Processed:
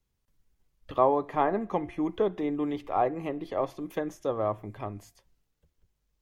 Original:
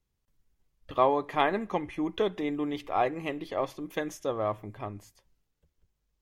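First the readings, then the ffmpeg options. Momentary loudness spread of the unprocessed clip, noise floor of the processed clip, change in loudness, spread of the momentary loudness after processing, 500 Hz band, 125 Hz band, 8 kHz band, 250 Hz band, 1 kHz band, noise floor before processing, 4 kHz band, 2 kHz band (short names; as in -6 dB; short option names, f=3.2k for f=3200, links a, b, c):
12 LU, -79 dBFS, +0.5 dB, 12 LU, +1.5 dB, +1.5 dB, n/a, +1.5 dB, +0.5 dB, -80 dBFS, -9.0 dB, -6.0 dB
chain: -filter_complex "[0:a]bandreject=f=348.5:t=h:w=4,bandreject=f=697:t=h:w=4,acrossover=split=480|1400[a][b][c];[c]acompressor=threshold=-51dB:ratio=6[d];[a][b][d]amix=inputs=3:normalize=0,volume=1.5dB"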